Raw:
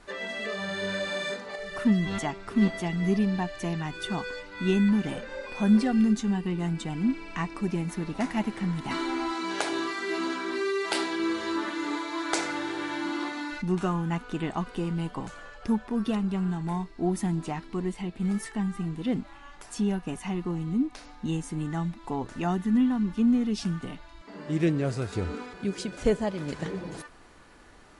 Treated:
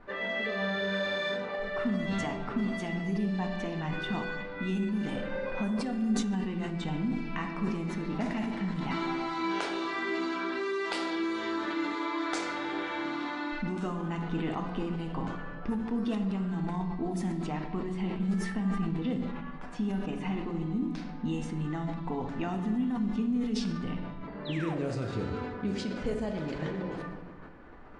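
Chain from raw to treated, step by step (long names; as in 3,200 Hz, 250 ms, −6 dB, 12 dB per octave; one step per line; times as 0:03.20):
low-pass that shuts in the quiet parts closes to 1,600 Hz, open at −20.5 dBFS
downward compressor 10 to 1, threshold −31 dBFS, peak gain reduction 15.5 dB
sound drawn into the spectrogram fall, 0:24.45–0:24.84, 350–4,300 Hz −44 dBFS
on a send at −3 dB: convolution reverb RT60 1.5 s, pre-delay 4 ms
on the sum: level that may fall only so fast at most 45 dB per second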